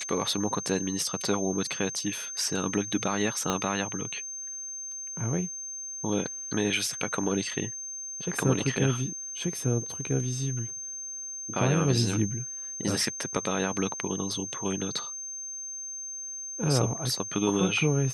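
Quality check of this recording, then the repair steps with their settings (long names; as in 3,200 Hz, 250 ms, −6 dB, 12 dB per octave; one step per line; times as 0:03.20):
whistle 6,300 Hz −35 dBFS
0:03.50: click −12 dBFS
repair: click removal
notch filter 6,300 Hz, Q 30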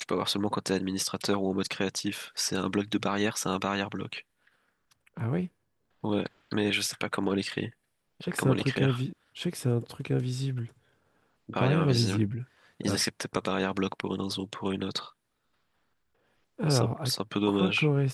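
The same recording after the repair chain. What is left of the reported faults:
0:03.50: click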